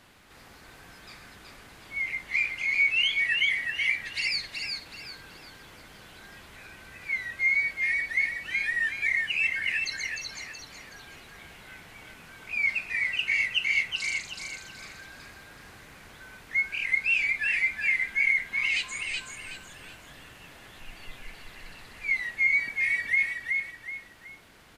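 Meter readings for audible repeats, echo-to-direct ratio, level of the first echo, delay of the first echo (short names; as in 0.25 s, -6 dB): 3, -3.5 dB, -4.0 dB, 0.374 s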